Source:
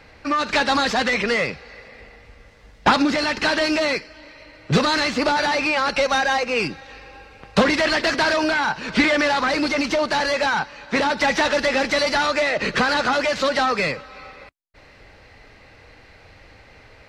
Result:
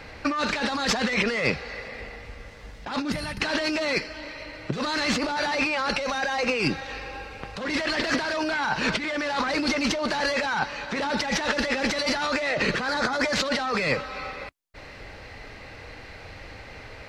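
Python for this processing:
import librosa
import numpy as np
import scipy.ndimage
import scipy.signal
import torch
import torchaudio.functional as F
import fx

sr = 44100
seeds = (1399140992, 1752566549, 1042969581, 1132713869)

y = fx.spec_box(x, sr, start_s=3.12, length_s=0.29, low_hz=200.0, high_hz=8500.0, gain_db=-17)
y = fx.peak_eq(y, sr, hz=2800.0, db=-13.5, octaves=0.29, at=(12.87, 13.35))
y = fx.over_compress(y, sr, threshold_db=-26.0, ratio=-1.0)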